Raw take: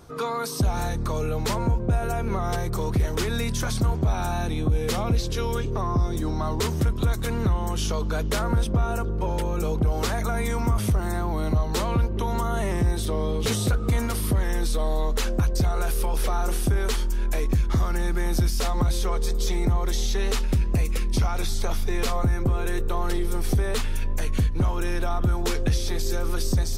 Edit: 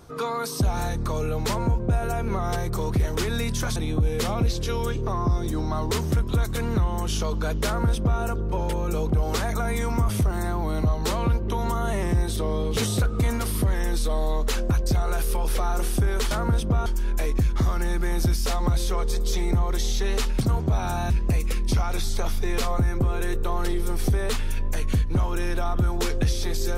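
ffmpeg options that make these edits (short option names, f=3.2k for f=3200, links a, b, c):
-filter_complex "[0:a]asplit=6[a][b][c][d][e][f];[a]atrim=end=3.762[g];[b]atrim=start=4.448:end=17.002[h];[c]atrim=start=8.348:end=8.902[i];[d]atrim=start=16.998:end=20.552[j];[e]atrim=start=3.758:end=4.452[k];[f]atrim=start=20.548[l];[g][h]acrossfade=d=0.004:c1=hsin:c2=hsin[m];[m][i]acrossfade=d=0.004:c1=hsin:c2=hsin[n];[n][j]acrossfade=d=0.004:c1=hsin:c2=hsin[o];[o][k]acrossfade=d=0.004:c1=hsin:c2=hsin[p];[p][l]acrossfade=d=0.004:c1=hsin:c2=hsin"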